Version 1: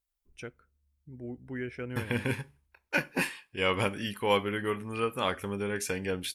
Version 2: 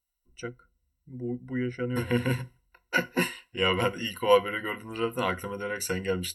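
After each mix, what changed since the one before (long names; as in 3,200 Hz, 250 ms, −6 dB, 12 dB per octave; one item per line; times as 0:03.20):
master: add EQ curve with evenly spaced ripples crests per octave 2, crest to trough 17 dB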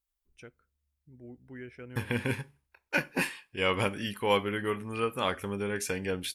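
first voice −7.5 dB
master: remove EQ curve with evenly spaced ripples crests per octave 2, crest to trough 17 dB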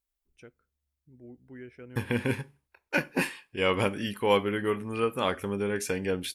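first voice −4.0 dB
master: add parametric band 330 Hz +4 dB 2.4 octaves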